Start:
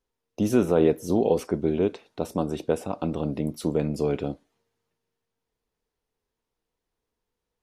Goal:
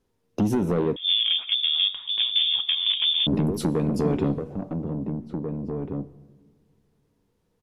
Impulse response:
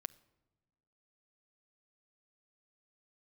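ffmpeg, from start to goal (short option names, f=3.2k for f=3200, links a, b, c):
-filter_complex "[0:a]equalizer=f=160:t=o:w=2.8:g=11.5,acompressor=threshold=-20dB:ratio=16,asoftclip=type=tanh:threshold=-22.5dB,asplit=2[a][b];[b]adelay=1691,volume=-6dB,highshelf=f=4k:g=-38[c];[a][c]amix=inputs=2:normalize=0[d];[1:a]atrim=start_sample=2205,asetrate=26901,aresample=44100[e];[d][e]afir=irnorm=-1:irlink=0,asettb=1/sr,asplit=3[f][g][h];[f]atrim=end=0.964[i];[g]atrim=start=0.96:end=3.27,asetpts=PTS-STARTPTS,afade=t=in:d=0.004:c=qsin,afade=t=out:st=2.306:d=0.004:c=qsin,lowpass=f=3.1k:t=q:w=0.5098,lowpass=f=3.1k:t=q:w=0.6013,lowpass=f=3.1k:t=q:w=0.9,lowpass=f=3.1k:t=q:w=2.563,afreqshift=-3700[j];[h]atrim=start=3.266[k];[i][j]acrossfade=d=0.004:c1=hsin:c2=qsin[l];[l][k]acrossfade=d=0.004:c1=qsin:c2=hsin,volume=7dB"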